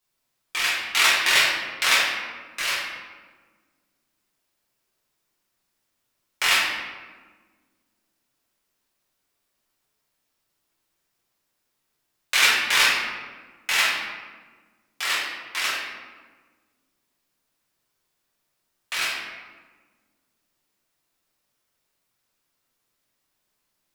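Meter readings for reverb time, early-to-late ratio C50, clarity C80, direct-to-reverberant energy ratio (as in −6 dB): 1.5 s, 0.0 dB, 3.0 dB, −8.0 dB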